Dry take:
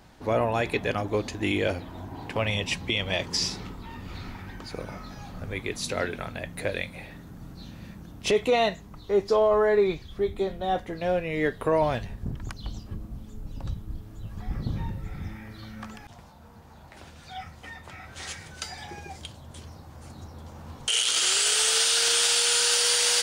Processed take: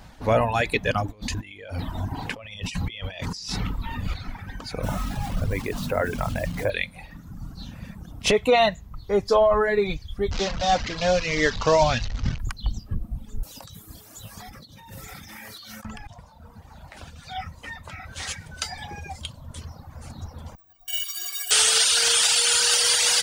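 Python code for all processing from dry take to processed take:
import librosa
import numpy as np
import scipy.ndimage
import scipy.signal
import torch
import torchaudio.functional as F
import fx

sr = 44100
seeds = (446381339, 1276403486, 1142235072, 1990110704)

y = fx.chain(x, sr, fx.peak_eq(hz=640.0, db=-2.5, octaves=2.1),
    fx.over_compress(threshold_db=-37.0, ratio=-1.0), at=(1.08, 4.14))
y = fx.chain(y, sr, fx.lowpass(hz=1400.0, slope=12),
    fx.quant_dither(seeds[0], bits=8, dither='none'),
    fx.env_flatten(amount_pct=50), at=(4.83, 6.7))
y = fx.chain(y, sr, fx.delta_mod(bps=32000, step_db=-29.0),
    fx.high_shelf(hz=3600.0, db=9.5), at=(10.31, 12.39))
y = fx.chain(y, sr, fx.highpass(hz=74.0, slope=12),
    fx.bass_treble(bass_db=-13, treble_db=15),
    fx.over_compress(threshold_db=-46.0, ratio=-1.0), at=(13.43, 15.85))
y = fx.chain(y, sr, fx.stiff_resonator(f0_hz=340.0, decay_s=0.27, stiffness=0.03),
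    fx.resample_bad(factor=2, down='none', up='zero_stuff'), at=(20.55, 21.51))
y = fx.peak_eq(y, sr, hz=360.0, db=-8.5, octaves=0.47)
y = fx.dereverb_blind(y, sr, rt60_s=1.5)
y = fx.low_shelf(y, sr, hz=60.0, db=8.5)
y = y * 10.0 ** (6.0 / 20.0)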